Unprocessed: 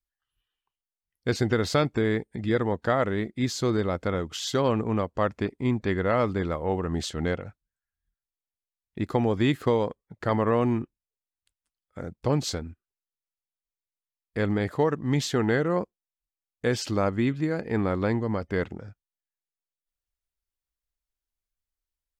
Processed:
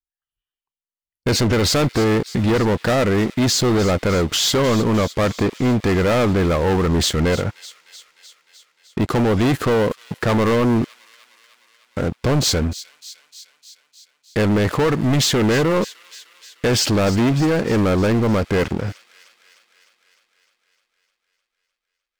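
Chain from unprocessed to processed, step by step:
leveller curve on the samples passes 5
brickwall limiter −13.5 dBFS, peak gain reduction 4 dB
delay with a high-pass on its return 304 ms, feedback 68%, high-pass 2,700 Hz, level −14 dB

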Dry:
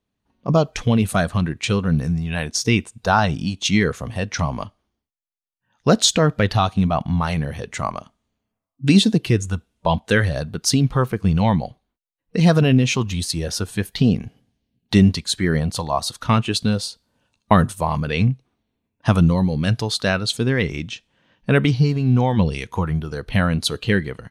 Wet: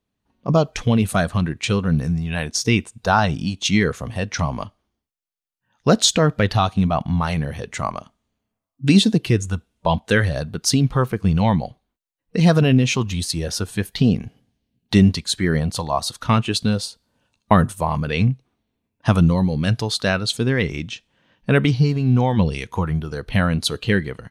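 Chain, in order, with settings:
0:16.85–0:18.12: dynamic equaliser 4,500 Hz, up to −4 dB, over −39 dBFS, Q 1.1

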